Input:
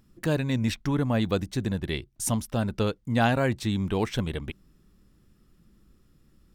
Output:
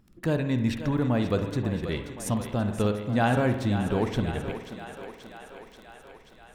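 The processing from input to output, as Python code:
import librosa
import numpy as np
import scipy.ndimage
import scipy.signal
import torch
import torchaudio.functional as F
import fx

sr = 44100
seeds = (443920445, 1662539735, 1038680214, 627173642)

p1 = fx.high_shelf(x, sr, hz=2500.0, db=-7.5)
p2 = fx.dmg_crackle(p1, sr, seeds[0], per_s=11.0, level_db=-39.0)
p3 = p2 + fx.echo_thinned(p2, sr, ms=533, feedback_pct=71, hz=300.0, wet_db=-10, dry=0)
y = fx.rev_spring(p3, sr, rt60_s=1.0, pass_ms=(48,), chirp_ms=25, drr_db=7.5)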